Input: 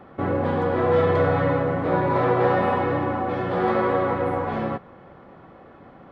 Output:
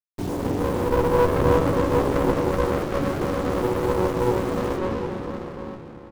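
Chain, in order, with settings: resonances exaggerated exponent 3; 0.59–1.58 s: resonant high shelf 1.8 kHz -13 dB, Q 3; 2.31–3.01 s: high-pass 570 Hz 24 dB/octave; bit crusher 6-bit; echo from a far wall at 130 m, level -8 dB; reverberation RT60 2.6 s, pre-delay 115 ms, DRR -3 dB; sliding maximum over 33 samples; trim -2.5 dB

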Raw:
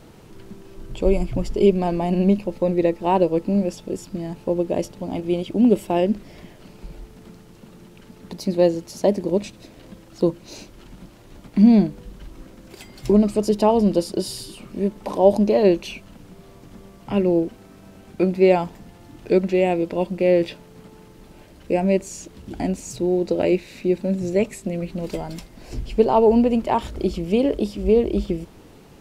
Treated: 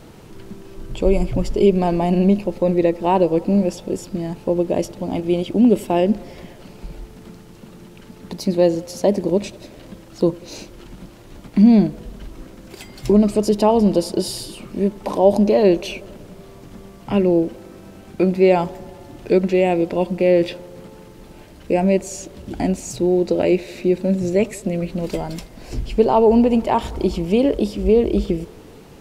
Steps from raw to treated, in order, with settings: feedback echo behind a band-pass 95 ms, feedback 74%, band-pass 680 Hz, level -23.5 dB; in parallel at -2.5 dB: peak limiter -13.5 dBFS, peak gain reduction 11.5 dB; on the sum: trim -1 dB

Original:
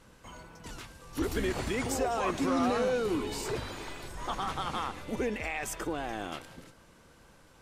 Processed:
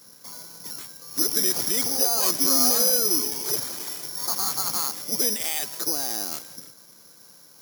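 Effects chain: careless resampling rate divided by 8×, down filtered, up zero stuff; high-pass 130 Hz 24 dB/octave; trim -1 dB

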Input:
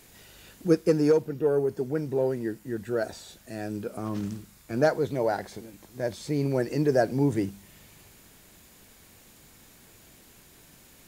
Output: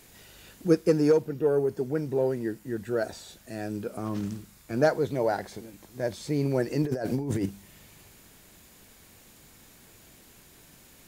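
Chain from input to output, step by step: 6.82–7.46 s: compressor with a negative ratio -29 dBFS, ratio -1

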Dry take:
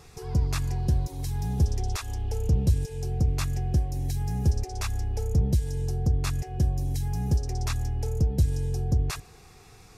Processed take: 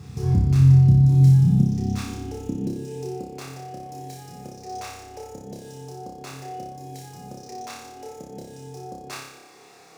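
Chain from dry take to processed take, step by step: median filter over 3 samples; compression, threshold -26 dBFS, peak gain reduction 10 dB; peak limiter -25.5 dBFS, peak gain reduction 6 dB; resonant low shelf 370 Hz +9 dB, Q 1.5; on a send: flutter echo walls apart 5.1 m, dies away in 0.8 s; on the sum: high-pass sweep 96 Hz -> 560 Hz, 0.63–3.60 s

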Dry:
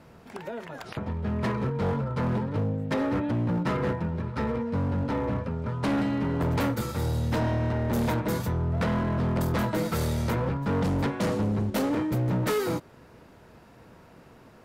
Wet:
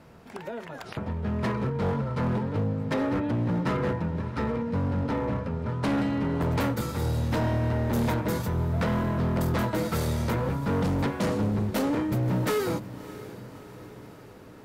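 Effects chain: echo that smears into a reverb 626 ms, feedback 61%, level -16 dB

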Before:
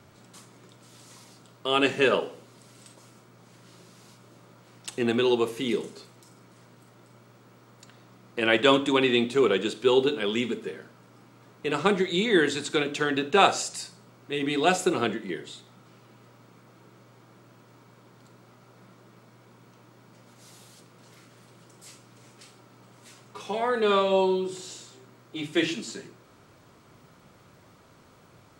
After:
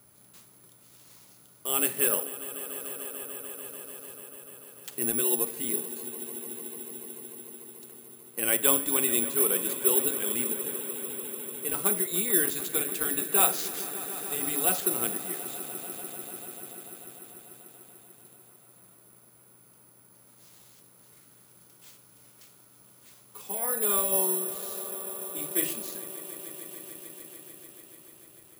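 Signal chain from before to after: on a send: echo with a slow build-up 147 ms, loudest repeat 5, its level -17 dB; on the sum: careless resampling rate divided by 4×, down none, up zero stuff; trim -9.5 dB

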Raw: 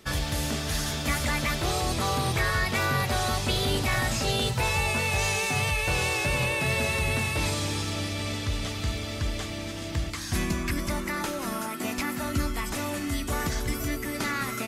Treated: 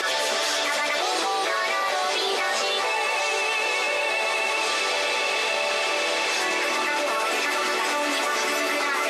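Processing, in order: high-pass 430 Hz 24 dB/octave; plain phase-vocoder stretch 0.62×; distance through air 60 m; echo that smears into a reverb 1220 ms, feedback 67%, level -7 dB; level flattener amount 100%; trim +5 dB

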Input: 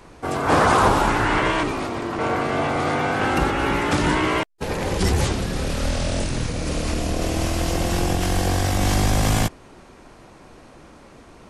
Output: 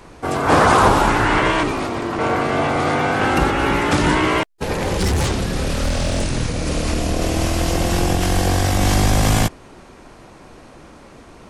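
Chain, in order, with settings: 4.77–6.22 s: hard clipper -17.5 dBFS, distortion -23 dB; trim +3.5 dB

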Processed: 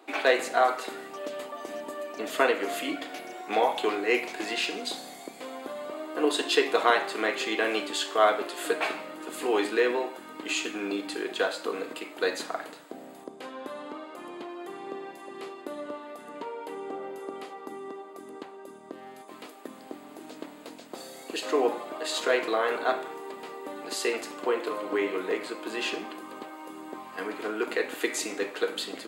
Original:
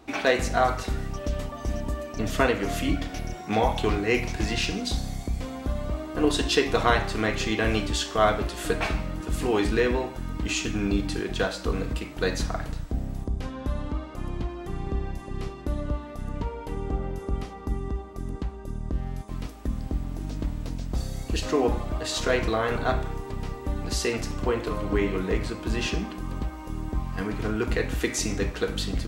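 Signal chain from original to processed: high-pass 330 Hz 24 dB/octave; peaking EQ 5.7 kHz -11.5 dB 0.26 oct

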